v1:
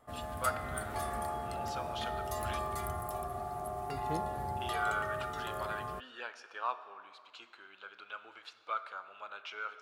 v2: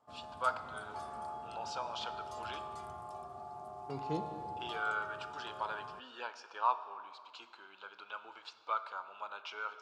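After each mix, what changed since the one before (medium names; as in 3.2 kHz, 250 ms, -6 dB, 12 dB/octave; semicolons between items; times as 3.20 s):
second voice: send +9.5 dB; background -10.0 dB; master: add cabinet simulation 110–8100 Hz, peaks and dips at 930 Hz +10 dB, 1.9 kHz -9 dB, 4.9 kHz +4 dB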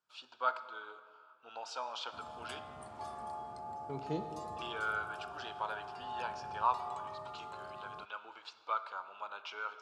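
background: entry +2.05 s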